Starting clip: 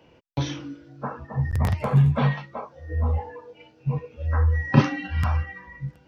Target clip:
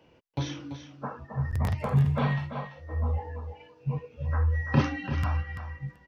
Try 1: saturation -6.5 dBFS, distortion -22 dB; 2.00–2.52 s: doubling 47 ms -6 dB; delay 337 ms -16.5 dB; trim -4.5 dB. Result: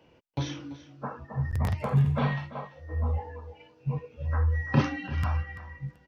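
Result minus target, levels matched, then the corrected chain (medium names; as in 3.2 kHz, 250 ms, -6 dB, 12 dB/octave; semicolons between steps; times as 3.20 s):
echo-to-direct -6 dB
saturation -6.5 dBFS, distortion -22 dB; 2.00–2.52 s: doubling 47 ms -6 dB; delay 337 ms -10.5 dB; trim -4.5 dB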